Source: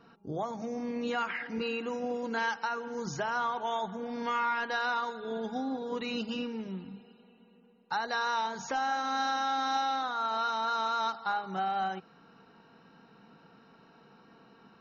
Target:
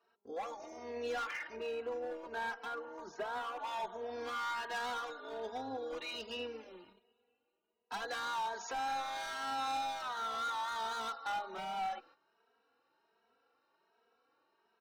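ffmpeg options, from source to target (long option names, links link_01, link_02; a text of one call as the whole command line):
ffmpeg -i in.wav -filter_complex "[0:a]highpass=frequency=360:width=0.5412,highpass=frequency=360:width=1.3066,agate=range=-12dB:threshold=-56dB:ratio=16:detection=peak,asettb=1/sr,asplit=3[link_01][link_02][link_03];[link_01]atrim=end=1.564[link_04];[link_02]atrim=start=1.56:end=3.59,asetpts=PTS-STARTPTS,afade=type=in:duration=0.004:curve=qsin,afade=type=out:start_time=2.026:duration=0.004:curve=qsin,lowpass=frequency=1300:poles=1[link_05];[link_03]atrim=start=3.586[link_06];[link_04][link_05]acrossfade=duration=0.004:curve1=hsin:curve2=qsin[link_07];[link_07][link_06]acrossfade=duration=0.004:curve1=qsin:curve2=hsin,volume=32.5dB,asoftclip=hard,volume=-32.5dB,tremolo=f=160:d=0.519,asplit=2[link_08][link_09];[link_09]adelay=2.8,afreqshift=1.3[link_10];[link_08][link_10]amix=inputs=2:normalize=1,volume=2dB" out.wav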